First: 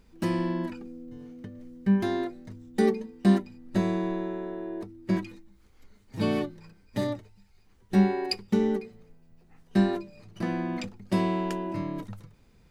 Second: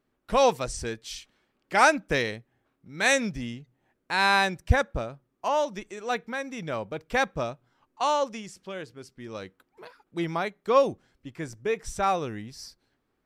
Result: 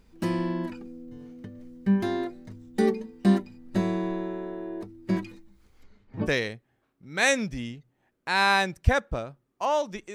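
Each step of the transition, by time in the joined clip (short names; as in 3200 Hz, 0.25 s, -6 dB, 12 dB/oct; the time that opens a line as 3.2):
first
5.82–6.28 LPF 7600 Hz -> 1100 Hz
6.25 switch to second from 2.08 s, crossfade 0.06 s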